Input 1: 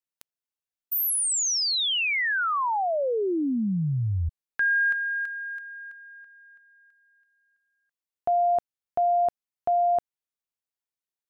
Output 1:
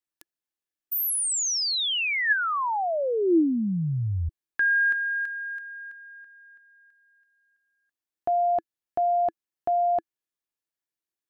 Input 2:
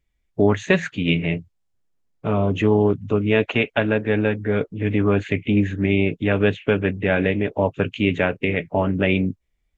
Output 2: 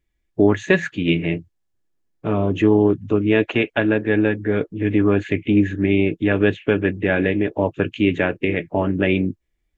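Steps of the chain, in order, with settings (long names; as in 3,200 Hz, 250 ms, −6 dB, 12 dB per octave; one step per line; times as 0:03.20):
hollow resonant body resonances 330/1,700 Hz, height 9 dB, ringing for 45 ms
level −1 dB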